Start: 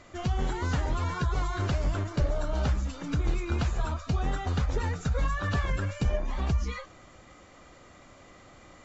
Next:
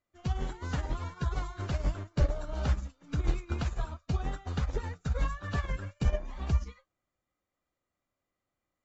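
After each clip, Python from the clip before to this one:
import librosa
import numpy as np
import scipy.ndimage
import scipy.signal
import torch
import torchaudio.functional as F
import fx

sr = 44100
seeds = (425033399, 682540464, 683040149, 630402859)

y = fx.upward_expand(x, sr, threshold_db=-46.0, expansion=2.5)
y = y * librosa.db_to_amplitude(2.5)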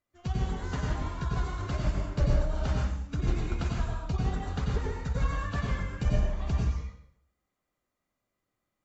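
y = fx.rev_plate(x, sr, seeds[0], rt60_s=0.7, hf_ratio=0.85, predelay_ms=80, drr_db=-1.0)
y = y * librosa.db_to_amplitude(-1.0)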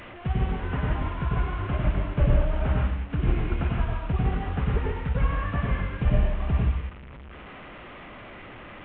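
y = fx.delta_mod(x, sr, bps=16000, step_db=-41.0)
y = y * librosa.db_to_amplitude(4.5)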